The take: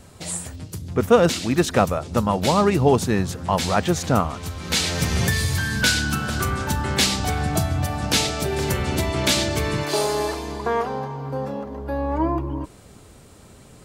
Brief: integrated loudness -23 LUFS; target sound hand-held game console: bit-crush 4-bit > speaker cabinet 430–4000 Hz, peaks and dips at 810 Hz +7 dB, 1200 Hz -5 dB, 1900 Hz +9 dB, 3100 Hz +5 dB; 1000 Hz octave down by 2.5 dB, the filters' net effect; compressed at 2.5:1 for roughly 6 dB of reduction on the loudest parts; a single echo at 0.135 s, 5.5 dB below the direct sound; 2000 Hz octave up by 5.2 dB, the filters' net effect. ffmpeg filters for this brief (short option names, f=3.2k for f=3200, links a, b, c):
-af "equalizer=f=1k:t=o:g=-8,equalizer=f=2k:t=o:g=4,acompressor=threshold=-21dB:ratio=2.5,aecho=1:1:135:0.531,acrusher=bits=3:mix=0:aa=0.000001,highpass=430,equalizer=f=810:t=q:w=4:g=7,equalizer=f=1.2k:t=q:w=4:g=-5,equalizer=f=1.9k:t=q:w=4:g=9,equalizer=f=3.1k:t=q:w=4:g=5,lowpass=f=4k:w=0.5412,lowpass=f=4k:w=1.3066,volume=0.5dB"